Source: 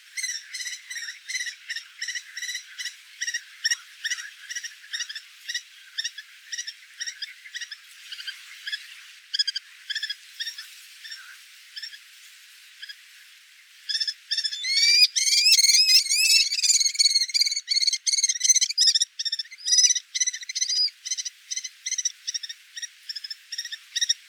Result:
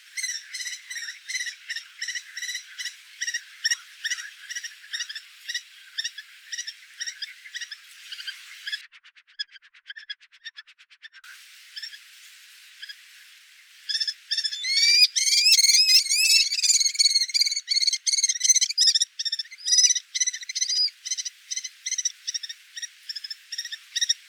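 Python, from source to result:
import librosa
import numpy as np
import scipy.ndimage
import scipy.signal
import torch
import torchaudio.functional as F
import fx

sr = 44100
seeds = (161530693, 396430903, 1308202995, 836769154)

y = fx.notch(x, sr, hz=6200.0, q=11.0, at=(4.39, 6.6))
y = fx.filter_lfo_lowpass(y, sr, shape='sine', hz=8.6, low_hz=270.0, high_hz=4000.0, q=0.77, at=(8.81, 11.24))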